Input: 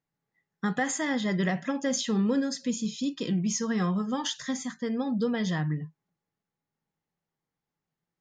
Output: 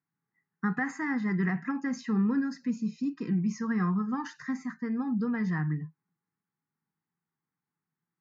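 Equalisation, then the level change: HPF 140 Hz; air absorption 240 m; fixed phaser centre 1400 Hz, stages 4; +2.5 dB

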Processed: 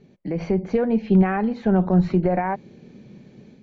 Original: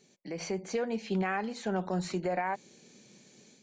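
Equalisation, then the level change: air absorption 170 m; RIAA curve playback; +7.5 dB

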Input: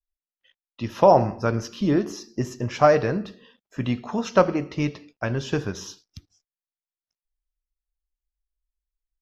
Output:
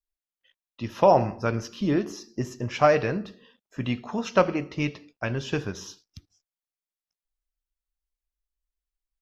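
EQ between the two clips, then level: dynamic EQ 2600 Hz, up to +7 dB, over -42 dBFS, Q 1.6; -3.0 dB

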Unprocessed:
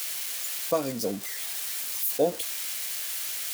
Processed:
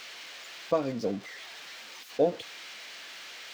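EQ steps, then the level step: air absorption 200 m; 0.0 dB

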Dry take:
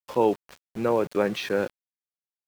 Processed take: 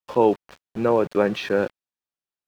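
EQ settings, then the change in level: high shelf 6000 Hz -12 dB; notch 2100 Hz, Q 13; +4.0 dB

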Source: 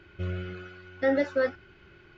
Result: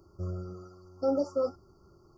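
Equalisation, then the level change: brick-wall FIR band-stop 1400–4500 Hz; high shelf 5000 Hz +10.5 dB; -3.0 dB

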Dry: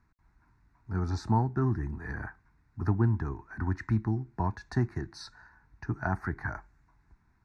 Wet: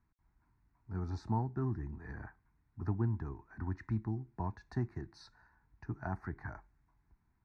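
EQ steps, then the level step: bell 1500 Hz -4 dB 0.69 oct; high shelf 5600 Hz -11 dB; -7.5 dB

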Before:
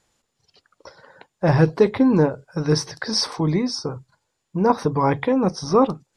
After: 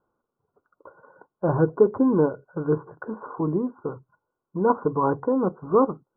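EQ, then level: rippled Chebyshev low-pass 1500 Hz, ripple 6 dB; low shelf 120 Hz -7 dB; 0.0 dB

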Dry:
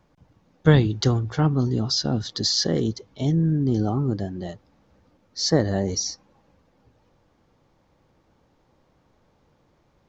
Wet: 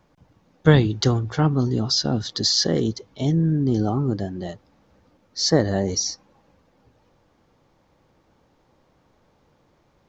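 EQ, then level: low shelf 190 Hz -3 dB; +2.5 dB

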